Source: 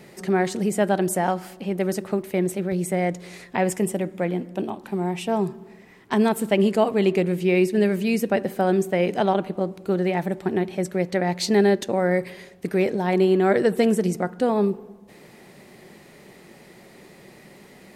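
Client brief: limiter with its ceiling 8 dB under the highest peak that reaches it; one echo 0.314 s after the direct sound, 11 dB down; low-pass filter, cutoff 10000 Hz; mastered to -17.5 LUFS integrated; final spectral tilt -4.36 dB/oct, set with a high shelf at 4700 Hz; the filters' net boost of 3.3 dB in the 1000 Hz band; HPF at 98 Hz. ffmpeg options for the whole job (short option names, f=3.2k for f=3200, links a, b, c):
-af "highpass=98,lowpass=10k,equalizer=f=1k:t=o:g=5,highshelf=f=4.7k:g=-4,alimiter=limit=-12dB:level=0:latency=1,aecho=1:1:314:0.282,volume=6.5dB"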